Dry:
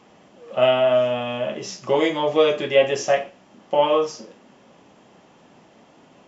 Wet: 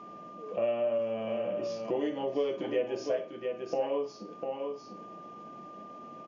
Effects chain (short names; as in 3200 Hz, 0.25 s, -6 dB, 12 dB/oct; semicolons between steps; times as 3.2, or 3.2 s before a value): pitch shift -1.5 st; bell 480 Hz +6 dB 0.9 oct; echo 0.698 s -9.5 dB; whine 1200 Hz -39 dBFS; small resonant body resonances 210/310/630/3300 Hz, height 9 dB, ringing for 35 ms; compressor 2:1, threshold -32 dBFS, peak gain reduction 15.5 dB; gain -7 dB